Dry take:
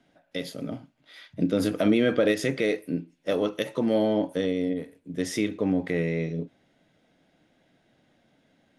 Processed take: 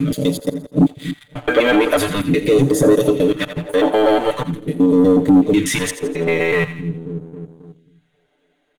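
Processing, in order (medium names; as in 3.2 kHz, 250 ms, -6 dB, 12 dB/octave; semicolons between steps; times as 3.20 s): slices played last to first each 123 ms, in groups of 6; waveshaping leveller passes 2; comb 6.8 ms, depth 86%; on a send: two-band feedback delay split 480 Hz, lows 269 ms, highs 84 ms, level -13 dB; on the sum: phase shifter stages 2, 0.44 Hz, lowest notch 130–2400 Hz; in parallel at -2.5 dB: compression, threshold -24 dBFS, peak gain reduction 12.5 dB; on the sum: waveshaping leveller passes 1; peaking EQ 5.2 kHz -12.5 dB 0.39 oct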